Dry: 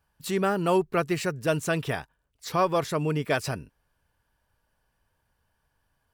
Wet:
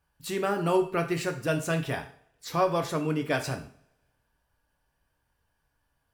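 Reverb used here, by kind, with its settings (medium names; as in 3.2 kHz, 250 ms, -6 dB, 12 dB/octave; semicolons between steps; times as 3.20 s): two-slope reverb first 0.48 s, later 1.6 s, from -27 dB, DRR 4.5 dB; trim -3 dB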